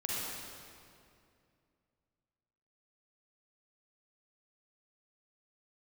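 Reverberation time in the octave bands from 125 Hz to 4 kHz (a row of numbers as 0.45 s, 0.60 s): 3.0 s, 2.9 s, 2.6 s, 2.3 s, 2.1 s, 1.8 s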